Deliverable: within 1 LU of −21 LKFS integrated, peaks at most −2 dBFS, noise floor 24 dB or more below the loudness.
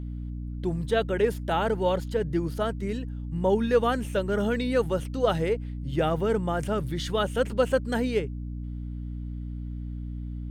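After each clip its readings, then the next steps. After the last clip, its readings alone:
mains hum 60 Hz; hum harmonics up to 300 Hz; level of the hum −32 dBFS; integrated loudness −28.0 LKFS; sample peak −10.0 dBFS; target loudness −21.0 LKFS
→ mains-hum notches 60/120/180/240/300 Hz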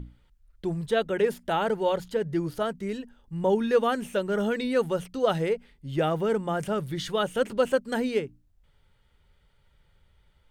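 mains hum none found; integrated loudness −27.5 LKFS; sample peak −11.0 dBFS; target loudness −21.0 LKFS
→ level +6.5 dB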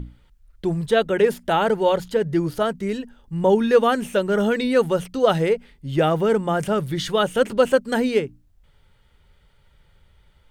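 integrated loudness −21.0 LKFS; sample peak −4.5 dBFS; background noise floor −58 dBFS

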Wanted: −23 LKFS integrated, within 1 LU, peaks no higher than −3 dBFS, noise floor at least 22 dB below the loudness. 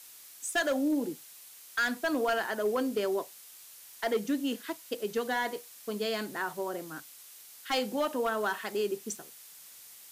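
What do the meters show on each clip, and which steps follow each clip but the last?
share of clipped samples 0.7%; peaks flattened at −22.5 dBFS; background noise floor −52 dBFS; target noise floor −54 dBFS; integrated loudness −32.0 LKFS; sample peak −22.5 dBFS; target loudness −23.0 LKFS
→ clipped peaks rebuilt −22.5 dBFS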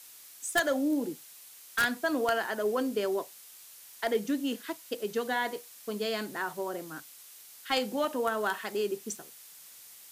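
share of clipped samples 0.0%; background noise floor −52 dBFS; target noise floor −54 dBFS
→ broadband denoise 6 dB, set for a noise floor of −52 dBFS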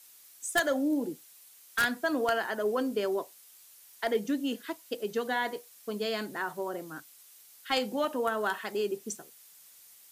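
background noise floor −56 dBFS; integrated loudness −31.5 LKFS; sample peak −13.5 dBFS; target loudness −23.0 LKFS
→ level +8.5 dB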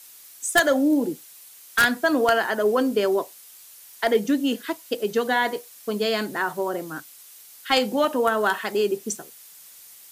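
integrated loudness −23.0 LKFS; sample peak −5.0 dBFS; background noise floor −47 dBFS

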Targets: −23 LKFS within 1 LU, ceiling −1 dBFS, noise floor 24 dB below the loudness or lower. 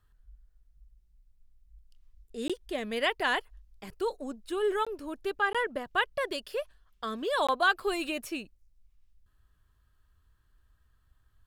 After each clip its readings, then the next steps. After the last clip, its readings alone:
number of dropouts 4; longest dropout 16 ms; integrated loudness −31.0 LKFS; sample peak −13.5 dBFS; target loudness −23.0 LKFS
→ repair the gap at 0:02.48/0:04.85/0:05.53/0:07.47, 16 ms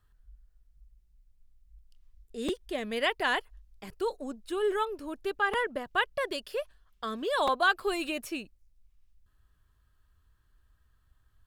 number of dropouts 0; integrated loudness −31.0 LKFS; sample peak −13.5 dBFS; target loudness −23.0 LKFS
→ level +8 dB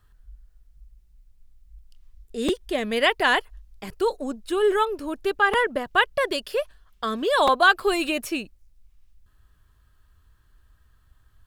integrated loudness −23.0 LKFS; sample peak −5.5 dBFS; background noise floor −60 dBFS

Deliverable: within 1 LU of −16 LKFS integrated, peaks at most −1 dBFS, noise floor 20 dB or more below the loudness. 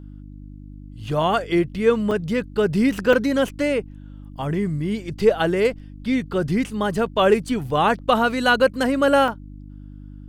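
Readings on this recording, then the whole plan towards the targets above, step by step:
number of dropouts 3; longest dropout 3.2 ms; mains hum 50 Hz; hum harmonics up to 300 Hz; level of the hum −37 dBFS; integrated loudness −21.0 LKFS; sample peak −4.0 dBFS; target loudness −16.0 LKFS
→ repair the gap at 0:02.11/0:03.13/0:09.28, 3.2 ms
hum removal 50 Hz, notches 6
level +5 dB
brickwall limiter −1 dBFS

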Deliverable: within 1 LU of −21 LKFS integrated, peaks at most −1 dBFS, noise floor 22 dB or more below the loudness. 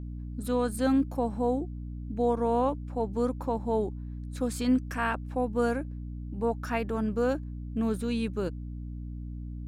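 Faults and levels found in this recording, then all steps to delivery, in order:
mains hum 60 Hz; hum harmonics up to 300 Hz; level of the hum −35 dBFS; integrated loudness −30.5 LKFS; sample peak −14.5 dBFS; target loudness −21.0 LKFS
→ hum removal 60 Hz, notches 5
level +9.5 dB

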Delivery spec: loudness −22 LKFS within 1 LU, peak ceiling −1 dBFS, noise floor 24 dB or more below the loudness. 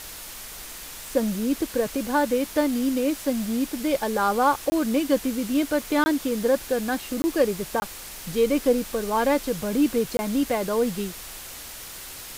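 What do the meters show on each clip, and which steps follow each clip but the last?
number of dropouts 5; longest dropout 20 ms; background noise floor −39 dBFS; target noise floor −49 dBFS; integrated loudness −24.5 LKFS; sample peak −8.5 dBFS; target loudness −22.0 LKFS
→ repair the gap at 0:04.70/0:06.04/0:07.22/0:07.80/0:10.17, 20 ms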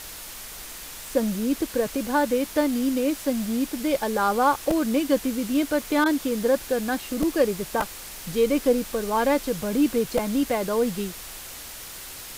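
number of dropouts 0; background noise floor −39 dBFS; target noise floor −49 dBFS
→ broadband denoise 10 dB, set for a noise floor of −39 dBFS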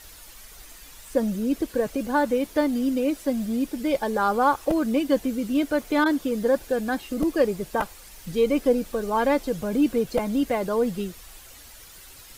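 background noise floor −47 dBFS; target noise floor −49 dBFS
→ broadband denoise 6 dB, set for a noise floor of −47 dBFS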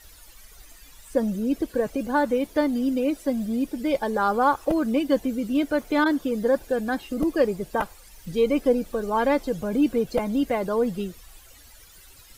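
background noise floor −50 dBFS; integrated loudness −24.5 LKFS; sample peak −9.0 dBFS; target loudness −22.0 LKFS
→ level +2.5 dB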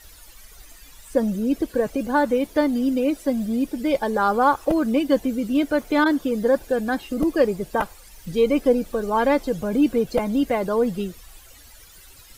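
integrated loudness −22.0 LKFS; sample peak −6.5 dBFS; background noise floor −47 dBFS

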